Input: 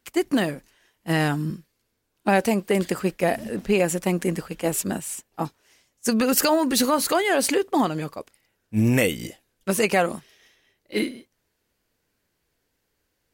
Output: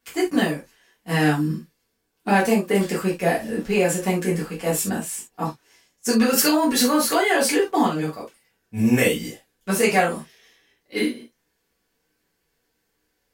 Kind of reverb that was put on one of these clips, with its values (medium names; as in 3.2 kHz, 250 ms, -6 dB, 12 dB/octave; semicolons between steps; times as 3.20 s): gated-style reverb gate 100 ms falling, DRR -6.5 dB; trim -5 dB